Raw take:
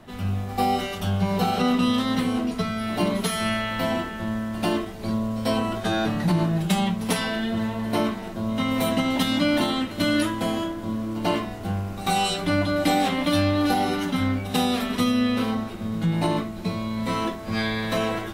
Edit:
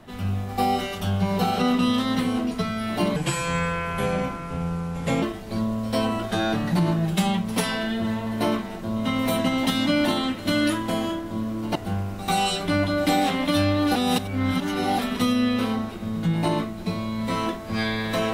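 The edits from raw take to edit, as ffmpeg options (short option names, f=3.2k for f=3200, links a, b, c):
-filter_complex "[0:a]asplit=6[a][b][c][d][e][f];[a]atrim=end=3.164[g];[b]atrim=start=3.16:end=4.75,asetpts=PTS-STARTPTS,asetrate=33957,aresample=44100[h];[c]atrim=start=4.746:end=11.282[i];[d]atrim=start=11.538:end=13.742[j];[e]atrim=start=13.738:end=14.772,asetpts=PTS-STARTPTS,areverse[k];[f]atrim=start=14.768[l];[g][h]acrossfade=d=0.004:c1=hsin:c2=hsin[m];[m][i]acrossfade=d=0.004:c1=hsin:c2=hsin[n];[n][j]acrossfade=d=0.004:c1=hsin:c2=hsin[o];[o][k]acrossfade=d=0.004:c1=hsin:c2=hsin[p];[p][l]acrossfade=d=0.004:c1=hsin:c2=hsin"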